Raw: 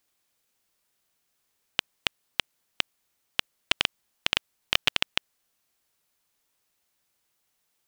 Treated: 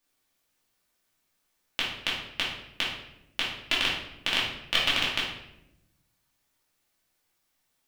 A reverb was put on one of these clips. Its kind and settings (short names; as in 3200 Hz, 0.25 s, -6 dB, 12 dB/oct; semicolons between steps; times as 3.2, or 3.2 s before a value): shoebox room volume 250 m³, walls mixed, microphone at 2.5 m; gain -6.5 dB